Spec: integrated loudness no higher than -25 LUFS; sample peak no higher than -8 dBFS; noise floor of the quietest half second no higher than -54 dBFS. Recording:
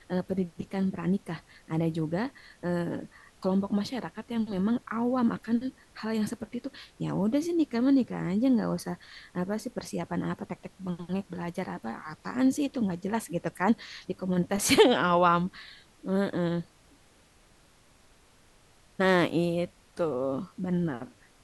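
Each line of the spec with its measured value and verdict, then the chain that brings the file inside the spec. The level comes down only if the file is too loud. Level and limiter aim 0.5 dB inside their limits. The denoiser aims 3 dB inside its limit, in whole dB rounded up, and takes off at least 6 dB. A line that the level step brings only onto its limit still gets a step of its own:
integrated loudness -29.5 LUFS: pass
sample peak -7.0 dBFS: fail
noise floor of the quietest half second -60 dBFS: pass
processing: peak limiter -8.5 dBFS

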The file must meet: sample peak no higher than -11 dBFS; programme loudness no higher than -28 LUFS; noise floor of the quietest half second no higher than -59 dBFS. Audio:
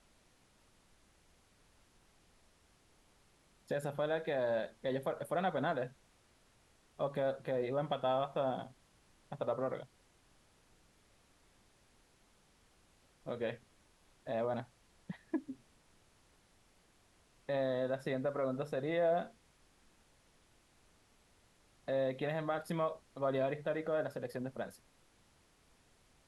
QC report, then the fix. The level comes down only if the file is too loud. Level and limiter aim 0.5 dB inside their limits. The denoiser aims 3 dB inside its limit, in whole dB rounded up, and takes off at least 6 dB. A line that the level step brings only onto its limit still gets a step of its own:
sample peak -23.0 dBFS: pass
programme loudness -37.5 LUFS: pass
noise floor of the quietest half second -69 dBFS: pass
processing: none needed

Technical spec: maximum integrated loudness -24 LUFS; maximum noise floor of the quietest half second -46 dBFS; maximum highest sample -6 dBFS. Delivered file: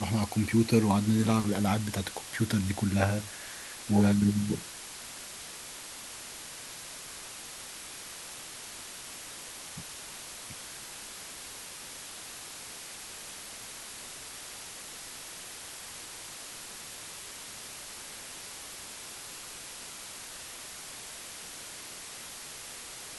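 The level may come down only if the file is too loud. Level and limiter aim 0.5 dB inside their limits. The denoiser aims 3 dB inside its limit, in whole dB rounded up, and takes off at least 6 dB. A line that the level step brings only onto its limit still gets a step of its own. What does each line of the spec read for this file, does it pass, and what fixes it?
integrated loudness -34.5 LUFS: pass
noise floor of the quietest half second -44 dBFS: fail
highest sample -10.5 dBFS: pass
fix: noise reduction 6 dB, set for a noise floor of -44 dBFS

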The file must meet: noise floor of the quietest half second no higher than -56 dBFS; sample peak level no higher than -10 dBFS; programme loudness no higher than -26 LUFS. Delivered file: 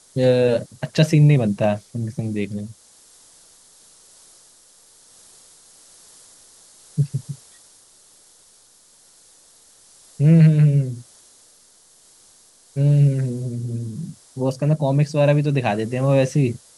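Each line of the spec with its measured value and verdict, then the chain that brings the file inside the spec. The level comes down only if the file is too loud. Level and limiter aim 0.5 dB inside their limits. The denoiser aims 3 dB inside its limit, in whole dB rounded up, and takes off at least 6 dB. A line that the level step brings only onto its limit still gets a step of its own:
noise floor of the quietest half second -53 dBFS: fail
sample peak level -3.0 dBFS: fail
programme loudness -19.5 LUFS: fail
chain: trim -7 dB; peak limiter -10.5 dBFS

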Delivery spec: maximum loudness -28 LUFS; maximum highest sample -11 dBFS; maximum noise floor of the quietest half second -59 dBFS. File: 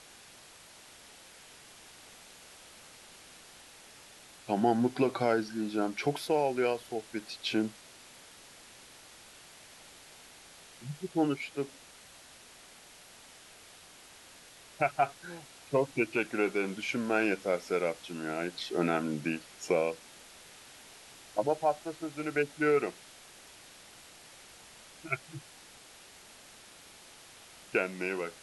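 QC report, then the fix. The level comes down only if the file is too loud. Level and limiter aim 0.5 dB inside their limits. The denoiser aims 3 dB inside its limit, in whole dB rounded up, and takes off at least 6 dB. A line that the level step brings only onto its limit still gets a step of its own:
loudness -32.0 LUFS: pass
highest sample -14.0 dBFS: pass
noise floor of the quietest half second -54 dBFS: fail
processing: noise reduction 8 dB, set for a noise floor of -54 dBFS

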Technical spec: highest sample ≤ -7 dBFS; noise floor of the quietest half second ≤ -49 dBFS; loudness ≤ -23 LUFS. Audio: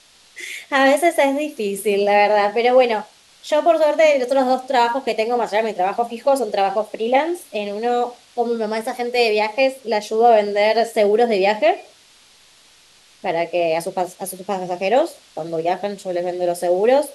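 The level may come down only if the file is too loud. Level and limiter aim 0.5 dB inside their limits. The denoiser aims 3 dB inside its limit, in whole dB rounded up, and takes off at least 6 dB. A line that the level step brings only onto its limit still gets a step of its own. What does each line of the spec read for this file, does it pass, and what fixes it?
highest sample -4.0 dBFS: fail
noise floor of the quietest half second -51 dBFS: pass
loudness -18.5 LUFS: fail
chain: trim -5 dB

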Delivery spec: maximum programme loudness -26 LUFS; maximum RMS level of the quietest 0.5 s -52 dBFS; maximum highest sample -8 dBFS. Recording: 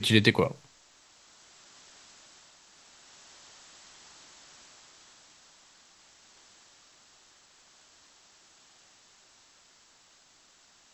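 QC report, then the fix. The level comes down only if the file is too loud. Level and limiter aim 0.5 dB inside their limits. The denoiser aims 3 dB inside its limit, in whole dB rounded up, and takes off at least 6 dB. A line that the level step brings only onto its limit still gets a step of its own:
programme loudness -24.5 LUFS: fail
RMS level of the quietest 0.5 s -61 dBFS: pass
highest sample -6.5 dBFS: fail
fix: trim -2 dB

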